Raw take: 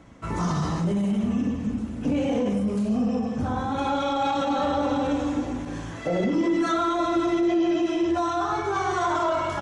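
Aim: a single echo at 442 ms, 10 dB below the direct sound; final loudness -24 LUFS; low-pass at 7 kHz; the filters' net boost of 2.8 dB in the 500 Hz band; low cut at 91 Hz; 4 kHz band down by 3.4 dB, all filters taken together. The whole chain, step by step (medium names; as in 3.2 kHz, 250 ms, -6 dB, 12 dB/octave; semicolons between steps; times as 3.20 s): high-pass 91 Hz; low-pass 7 kHz; peaking EQ 500 Hz +4 dB; peaking EQ 4 kHz -4 dB; delay 442 ms -10 dB; trim -0.5 dB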